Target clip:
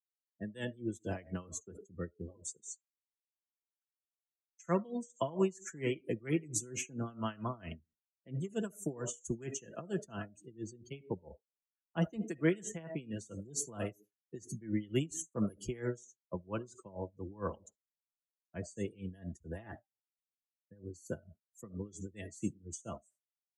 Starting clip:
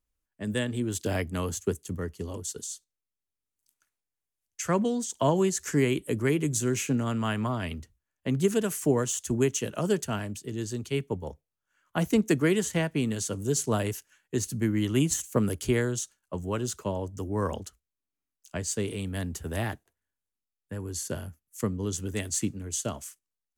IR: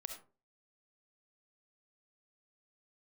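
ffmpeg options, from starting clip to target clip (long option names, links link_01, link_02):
-filter_complex "[0:a]asettb=1/sr,asplit=3[link_01][link_02][link_03];[link_01]atrim=end=9.284[link_04];[link_02]atrim=start=9.28:end=9.85,asetpts=PTS-STARTPTS,afade=type=in:duration=0.004:curve=qsin,afade=type=out:start_time=0.566:duration=0.004:curve=qsin,equalizer=frequency=1700:width=5.8:gain=6[link_05];[link_03]atrim=start=9.846[link_06];[link_04][link_05]acrossfade=duration=0.004:curve1=hsin:curve2=qsin[link_07];[link_07][link_06]acrossfade=duration=0.004:curve1=qsin:curve2=hsin,asplit=2[link_08][link_09];[1:a]atrim=start_sample=2205,lowshelf=frequency=170:gain=-9.5,adelay=6[link_10];[link_09][link_10]afir=irnorm=-1:irlink=0,volume=-1.5dB[link_11];[link_08][link_11]amix=inputs=2:normalize=0,afftdn=noise_reduction=31:noise_floor=-36,aeval=exprs='val(0)*pow(10,-21*(0.5-0.5*cos(2*PI*4.4*n/s))/20)':channel_layout=same,volume=-5dB"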